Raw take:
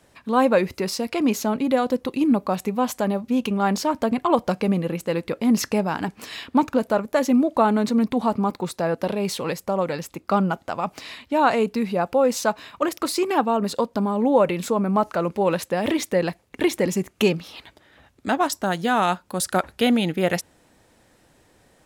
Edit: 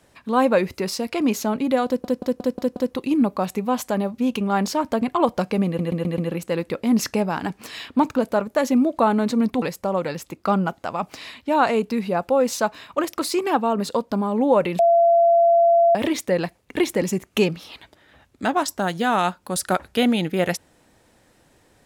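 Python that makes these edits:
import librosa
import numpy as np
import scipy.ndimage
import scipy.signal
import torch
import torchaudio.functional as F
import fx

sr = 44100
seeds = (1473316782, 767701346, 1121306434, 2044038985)

y = fx.edit(x, sr, fx.stutter(start_s=1.86, slice_s=0.18, count=6),
    fx.stutter(start_s=4.76, slice_s=0.13, count=5),
    fx.cut(start_s=8.2, length_s=1.26),
    fx.bleep(start_s=14.63, length_s=1.16, hz=680.0, db=-12.0), tone=tone)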